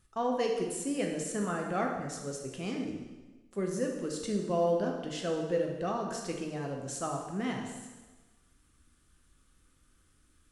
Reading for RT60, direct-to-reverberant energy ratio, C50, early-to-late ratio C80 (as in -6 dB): 1.2 s, 0.5 dB, 3.5 dB, 6.0 dB